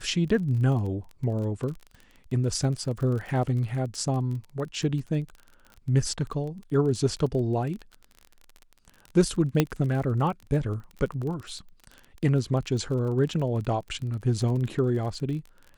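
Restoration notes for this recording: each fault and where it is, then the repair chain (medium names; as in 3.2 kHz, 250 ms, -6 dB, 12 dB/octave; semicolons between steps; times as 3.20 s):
crackle 32 per s -34 dBFS
9.60 s: pop -7 dBFS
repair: de-click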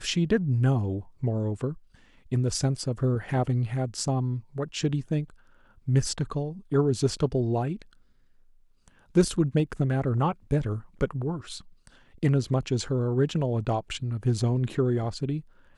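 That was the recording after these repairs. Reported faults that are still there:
9.60 s: pop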